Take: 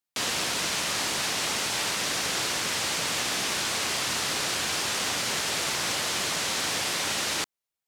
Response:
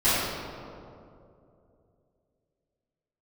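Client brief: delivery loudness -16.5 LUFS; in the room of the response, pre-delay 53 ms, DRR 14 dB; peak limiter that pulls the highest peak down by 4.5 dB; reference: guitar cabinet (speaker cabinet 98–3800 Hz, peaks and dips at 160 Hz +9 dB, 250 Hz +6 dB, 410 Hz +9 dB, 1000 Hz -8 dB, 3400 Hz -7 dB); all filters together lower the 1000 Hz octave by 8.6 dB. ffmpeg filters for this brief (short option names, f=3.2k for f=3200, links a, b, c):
-filter_complex "[0:a]equalizer=f=1k:t=o:g=-8.5,alimiter=limit=-21dB:level=0:latency=1,asplit=2[a][b];[1:a]atrim=start_sample=2205,adelay=53[c];[b][c]afir=irnorm=-1:irlink=0,volume=-31.5dB[d];[a][d]amix=inputs=2:normalize=0,highpass=98,equalizer=f=160:t=q:w=4:g=9,equalizer=f=250:t=q:w=4:g=6,equalizer=f=410:t=q:w=4:g=9,equalizer=f=1k:t=q:w=4:g=-8,equalizer=f=3.4k:t=q:w=4:g=-7,lowpass=f=3.8k:w=0.5412,lowpass=f=3.8k:w=1.3066,volume=16.5dB"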